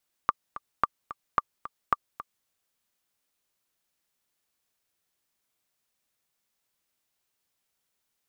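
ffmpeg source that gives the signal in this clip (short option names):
-f lavfi -i "aevalsrc='pow(10,(-8-15*gte(mod(t,2*60/220),60/220))/20)*sin(2*PI*1180*mod(t,60/220))*exp(-6.91*mod(t,60/220)/0.03)':d=2.18:s=44100"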